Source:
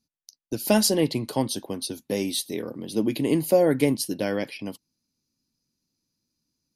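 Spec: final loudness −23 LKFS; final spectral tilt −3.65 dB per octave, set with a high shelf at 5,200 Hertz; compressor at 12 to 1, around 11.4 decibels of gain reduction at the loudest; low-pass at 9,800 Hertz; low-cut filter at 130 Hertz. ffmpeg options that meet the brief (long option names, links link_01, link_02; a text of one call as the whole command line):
ffmpeg -i in.wav -af "highpass=130,lowpass=9800,highshelf=frequency=5200:gain=4,acompressor=threshold=-26dB:ratio=12,volume=9dB" out.wav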